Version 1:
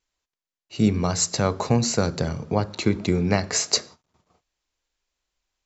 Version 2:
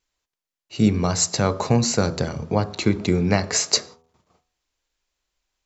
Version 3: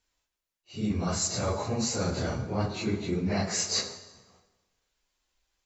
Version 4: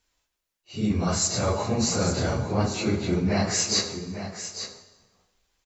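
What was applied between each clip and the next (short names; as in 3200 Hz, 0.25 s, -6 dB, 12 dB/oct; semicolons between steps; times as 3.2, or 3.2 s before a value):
de-hum 81.62 Hz, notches 16; gain +2 dB
phase scrambler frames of 0.1 s; reverse; compressor 6:1, threshold -27 dBFS, peak gain reduction 14.5 dB; reverse; plate-style reverb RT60 1.3 s, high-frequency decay 0.8×, DRR 9 dB
echo 0.85 s -10.5 dB; gain +4.5 dB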